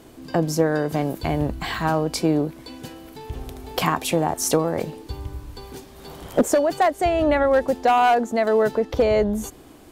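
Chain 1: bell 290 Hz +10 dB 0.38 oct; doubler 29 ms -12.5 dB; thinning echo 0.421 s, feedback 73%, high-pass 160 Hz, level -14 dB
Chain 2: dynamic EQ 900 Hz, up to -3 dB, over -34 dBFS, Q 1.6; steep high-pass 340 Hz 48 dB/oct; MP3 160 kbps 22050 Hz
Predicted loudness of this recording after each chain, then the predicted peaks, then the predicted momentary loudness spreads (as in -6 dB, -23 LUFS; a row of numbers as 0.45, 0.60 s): -19.0, -24.0 LUFS; -2.5, -8.0 dBFS; 16, 21 LU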